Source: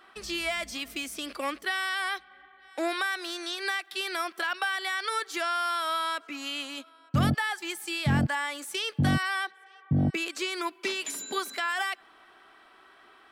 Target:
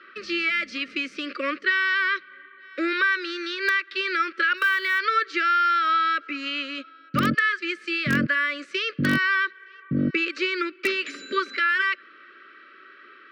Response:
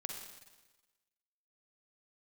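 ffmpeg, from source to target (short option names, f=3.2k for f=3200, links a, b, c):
-filter_complex "[0:a]asuperstop=centerf=840:order=12:qfactor=1.5,highpass=300,equalizer=f=450:t=q:w=4:g=-4,equalizer=f=640:t=q:w=4:g=-7,equalizer=f=3.4k:t=q:w=4:g=-10,lowpass=f=3.9k:w=0.5412,lowpass=f=3.9k:w=1.3066,asplit=2[a][b];[b]aeval=exprs='(mod(11.9*val(0)+1,2)-1)/11.9':c=same,volume=-8.5dB[c];[a][c]amix=inputs=2:normalize=0,asplit=3[d][e][f];[d]afade=t=out:st=4.56:d=0.02[g];[e]acrusher=bits=7:mode=log:mix=0:aa=0.000001,afade=t=in:st=4.56:d=0.02,afade=t=out:st=4.98:d=0.02[h];[f]afade=t=in:st=4.98:d=0.02[i];[g][h][i]amix=inputs=3:normalize=0,volume=7dB"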